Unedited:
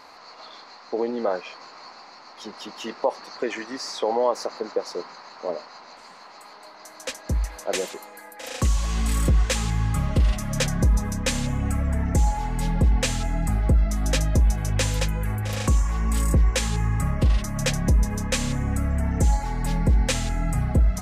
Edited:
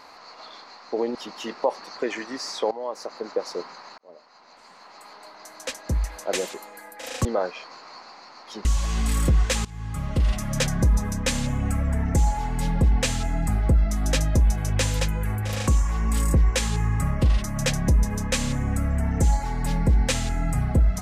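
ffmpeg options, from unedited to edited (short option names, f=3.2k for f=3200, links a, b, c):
-filter_complex "[0:a]asplit=7[a][b][c][d][e][f][g];[a]atrim=end=1.152[h];[b]atrim=start=2.548:end=4.11,asetpts=PTS-STARTPTS,afade=t=out:st=1.558:d=0.004:c=hsin:silence=0.158489[i];[c]atrim=start=4.11:end=5.38,asetpts=PTS-STARTPTS,afade=t=in:d=0.72:silence=0.158489,afade=t=out:st=1.266:d=0.004:c=hsin[j];[d]atrim=start=5.38:end=8.652,asetpts=PTS-STARTPTS,afade=t=in:d=1.14[k];[e]atrim=start=1.148:end=2.552[l];[f]atrim=start=8.648:end=9.65,asetpts=PTS-STARTPTS,afade=t=out:st=0.998:d=0.004:c=hsin:silence=0.0944061[m];[g]atrim=start=9.65,asetpts=PTS-STARTPTS,afade=t=in:d=0.72:silence=0.0944061[n];[i][j][k]concat=n=3:v=0:a=1[o];[h][o]acrossfade=d=0.004:c1=hsin:c2=hsin[p];[p][l]acrossfade=d=0.004:c1=hsin:c2=hsin[q];[m][n]concat=n=2:v=0:a=1[r];[q][r]acrossfade=d=0.004:c1=hsin:c2=hsin"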